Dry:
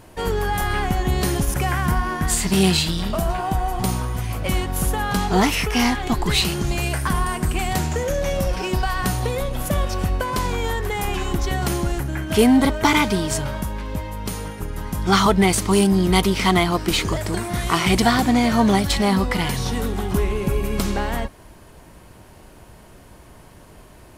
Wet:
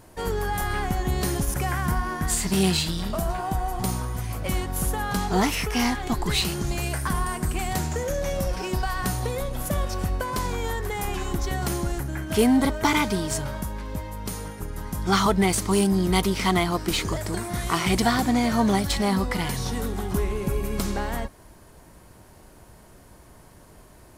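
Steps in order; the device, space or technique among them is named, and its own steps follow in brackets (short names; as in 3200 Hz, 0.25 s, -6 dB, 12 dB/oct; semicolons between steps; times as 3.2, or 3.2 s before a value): exciter from parts (in parallel at -7 dB: HPF 2600 Hz 24 dB/oct + soft clip -28.5 dBFS, distortion -6 dB); on the sum: gain -4.5 dB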